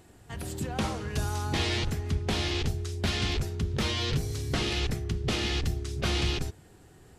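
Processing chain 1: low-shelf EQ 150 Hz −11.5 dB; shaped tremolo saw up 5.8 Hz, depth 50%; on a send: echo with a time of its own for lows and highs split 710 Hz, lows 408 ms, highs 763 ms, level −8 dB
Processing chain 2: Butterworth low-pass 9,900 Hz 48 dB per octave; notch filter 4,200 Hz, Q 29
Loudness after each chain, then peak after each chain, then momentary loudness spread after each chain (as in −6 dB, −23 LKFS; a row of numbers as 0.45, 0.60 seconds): −34.5, −30.5 LKFS; −18.5, −17.0 dBFS; 8, 5 LU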